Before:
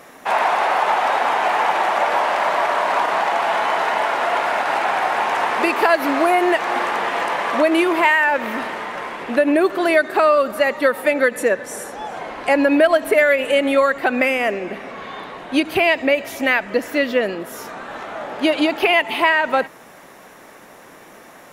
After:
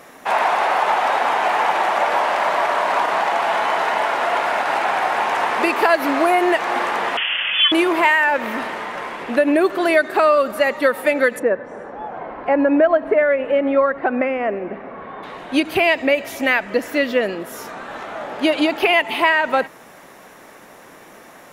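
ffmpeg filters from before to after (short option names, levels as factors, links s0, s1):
-filter_complex "[0:a]asettb=1/sr,asplit=3[s0][s1][s2];[s0]atrim=end=7.174[s3];[s1]atrim=start=7.17:end=7.72,asetpts=PTS-STARTPTS,afade=t=in:d=0.004:c=qsin,afade=t=out:st=0.546:d=0.004:c=qsin,lowpass=f=3100:t=q:w=0.5098,lowpass=f=3100:t=q:w=0.6013,lowpass=f=3100:t=q:w=0.9,lowpass=f=3100:t=q:w=2.563,afreqshift=-3700[s4];[s2]atrim=start=7.716[s5];[s3][s4]acrossfade=d=0.004:c1=hsin:c2=qsin[s6];[s6][s5]acrossfade=d=0.004:c1=qsin:c2=hsin,asplit=3[s7][s8][s9];[s7]afade=t=out:st=11.38:d=0.02[s10];[s8]lowpass=1400,afade=t=in:st=11.38:d=0.02,afade=t=out:st=15.22:d=0.02[s11];[s9]afade=t=in:st=15.22:d=0.02[s12];[s10][s11][s12]amix=inputs=3:normalize=0"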